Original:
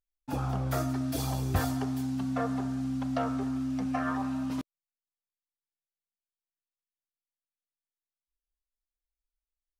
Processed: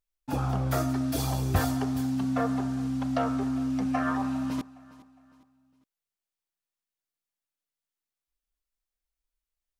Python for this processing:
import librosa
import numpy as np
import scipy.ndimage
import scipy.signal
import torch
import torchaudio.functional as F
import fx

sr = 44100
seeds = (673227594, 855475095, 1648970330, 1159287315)

y = fx.echo_feedback(x, sr, ms=409, feedback_pct=38, wet_db=-20.0)
y = y * librosa.db_to_amplitude(3.0)